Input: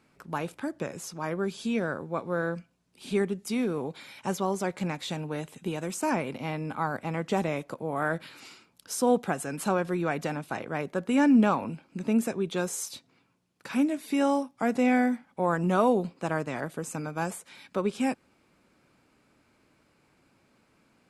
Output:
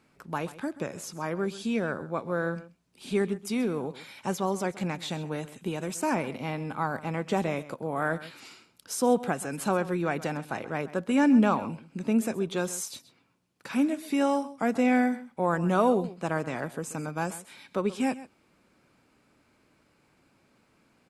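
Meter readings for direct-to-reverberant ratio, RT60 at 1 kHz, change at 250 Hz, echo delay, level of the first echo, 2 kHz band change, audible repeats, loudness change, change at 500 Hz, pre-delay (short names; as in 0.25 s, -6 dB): none, none, 0.0 dB, 0.131 s, -16.5 dB, 0.0 dB, 1, 0.0 dB, 0.0 dB, none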